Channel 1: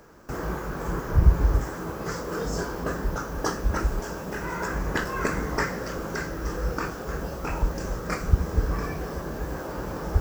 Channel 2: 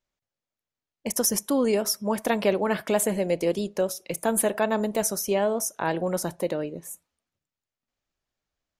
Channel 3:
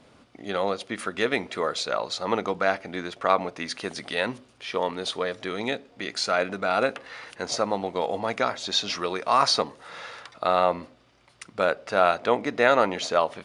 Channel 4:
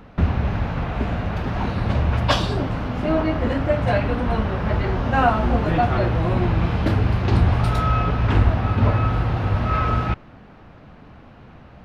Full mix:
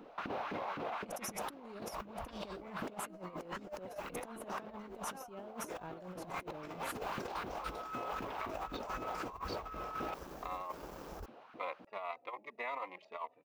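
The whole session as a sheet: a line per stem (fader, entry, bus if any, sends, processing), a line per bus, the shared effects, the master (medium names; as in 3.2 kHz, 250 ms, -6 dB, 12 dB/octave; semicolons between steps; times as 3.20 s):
-13.5 dB, 1.05 s, bus A, no send, band-stop 7.8 kHz, Q 25; crossover distortion -38 dBFS
-4.0 dB, 0.00 s, bus A, no send, tone controls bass +13 dB, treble -9 dB
-1.5 dB, 0.00 s, bus B, no send, local Wiener filter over 41 samples; two resonant band-passes 1.5 kHz, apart 0.96 oct; endless flanger 3.3 ms +1.7 Hz
-13.0 dB, 0.00 s, bus B, no send, LFO high-pass saw up 3.9 Hz 260–1600 Hz
bus A: 0.0 dB, peaking EQ 96 Hz -9 dB 2.6 oct; compression 12:1, threshold -35 dBFS, peak gain reduction 15.5 dB
bus B: 0.0 dB, short-mantissa float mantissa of 6-bit; compression 10:1, threshold -35 dBFS, peak gain reduction 16 dB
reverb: none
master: peaking EQ 1.8 kHz -5.5 dB 0.77 oct; compressor with a negative ratio -42 dBFS, ratio -0.5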